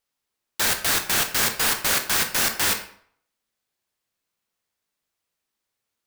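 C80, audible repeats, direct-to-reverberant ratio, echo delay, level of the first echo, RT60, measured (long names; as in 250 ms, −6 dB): 13.0 dB, no echo audible, 5.5 dB, no echo audible, no echo audible, 0.60 s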